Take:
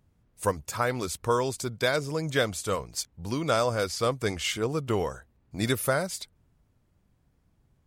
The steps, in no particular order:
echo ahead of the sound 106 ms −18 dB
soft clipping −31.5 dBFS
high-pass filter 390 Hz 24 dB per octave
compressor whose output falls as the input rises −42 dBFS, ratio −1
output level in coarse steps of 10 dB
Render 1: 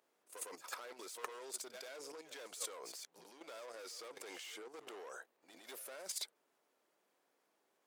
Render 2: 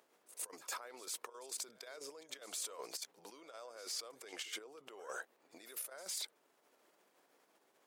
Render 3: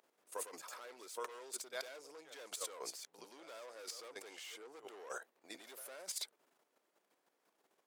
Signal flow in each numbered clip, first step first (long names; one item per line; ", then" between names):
soft clipping, then echo ahead of the sound, then compressor whose output falls as the input rises, then high-pass filter, then output level in coarse steps
compressor whose output falls as the input rises, then output level in coarse steps, then echo ahead of the sound, then soft clipping, then high-pass filter
echo ahead of the sound, then soft clipping, then compressor whose output falls as the input rises, then output level in coarse steps, then high-pass filter